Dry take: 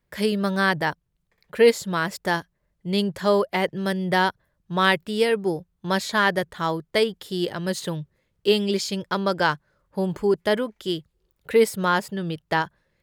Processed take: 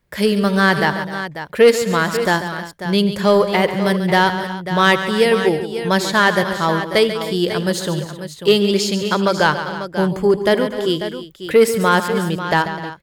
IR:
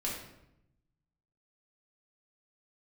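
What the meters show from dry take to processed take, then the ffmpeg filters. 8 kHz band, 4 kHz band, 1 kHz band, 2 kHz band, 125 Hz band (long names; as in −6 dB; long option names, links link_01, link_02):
+7.5 dB, +7.0 dB, +7.0 dB, +6.5 dB, +7.5 dB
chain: -af "acontrast=74,aecho=1:1:79|140|253|312|543:0.112|0.282|0.15|0.158|0.282"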